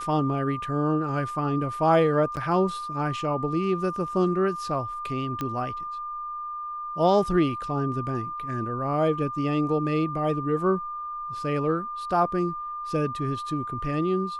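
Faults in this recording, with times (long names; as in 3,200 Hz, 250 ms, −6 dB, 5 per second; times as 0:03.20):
whistle 1,200 Hz −31 dBFS
0:02.36–0:02.37: drop-out 9 ms
0:05.41: click −16 dBFS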